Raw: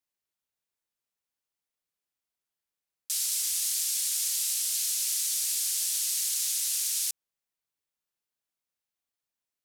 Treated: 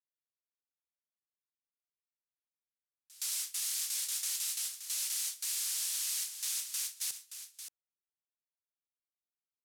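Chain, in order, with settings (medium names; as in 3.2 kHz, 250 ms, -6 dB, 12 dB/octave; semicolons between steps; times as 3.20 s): gate with hold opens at -18 dBFS; treble shelf 2.2 kHz -10.5 dB; delay 575 ms -10 dB; trim +3.5 dB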